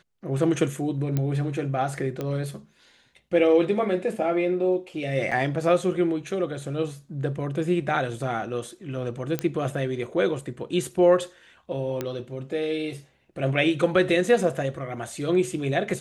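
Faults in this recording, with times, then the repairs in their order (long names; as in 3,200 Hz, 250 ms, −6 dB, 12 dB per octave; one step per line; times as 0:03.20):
0:01.17: click −13 dBFS
0:02.21: click −17 dBFS
0:05.31–0:05.32: drop-out 6.2 ms
0:09.39: click −11 dBFS
0:12.01: click −14 dBFS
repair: click removal
repair the gap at 0:05.31, 6.2 ms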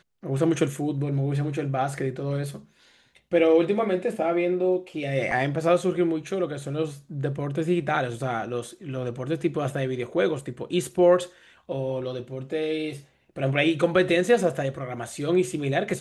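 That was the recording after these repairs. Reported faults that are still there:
none of them is left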